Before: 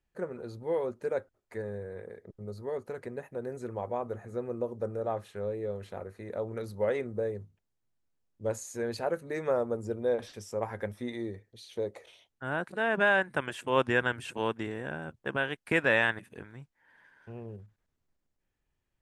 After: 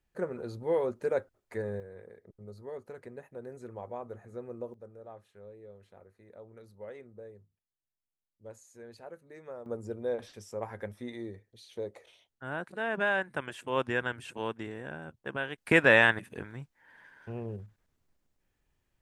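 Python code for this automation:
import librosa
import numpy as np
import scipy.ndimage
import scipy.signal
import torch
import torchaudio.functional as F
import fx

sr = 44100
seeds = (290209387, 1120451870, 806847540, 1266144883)

y = fx.gain(x, sr, db=fx.steps((0.0, 2.0), (1.8, -6.5), (4.74, -15.5), (9.66, -4.0), (15.58, 4.5)))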